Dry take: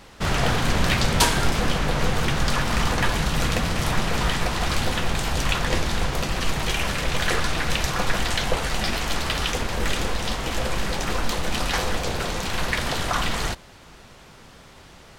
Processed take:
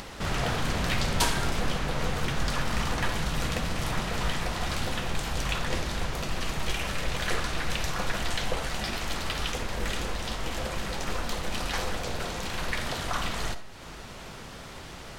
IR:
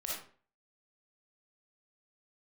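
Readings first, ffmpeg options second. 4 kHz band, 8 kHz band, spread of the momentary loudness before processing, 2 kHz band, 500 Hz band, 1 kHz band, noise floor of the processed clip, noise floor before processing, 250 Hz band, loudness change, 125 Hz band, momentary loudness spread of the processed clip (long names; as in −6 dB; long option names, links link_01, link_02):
−6.5 dB, −6.5 dB, 5 LU, −6.5 dB, −6.0 dB, −6.5 dB, −43 dBFS, −47 dBFS, −6.5 dB, −6.5 dB, −6.5 dB, 5 LU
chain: -filter_complex "[0:a]acompressor=mode=upward:threshold=-24dB:ratio=2.5,asplit=2[link_01][link_02];[1:a]atrim=start_sample=2205[link_03];[link_02][link_03]afir=irnorm=-1:irlink=0,volume=-9dB[link_04];[link_01][link_04]amix=inputs=2:normalize=0,volume=-8.5dB"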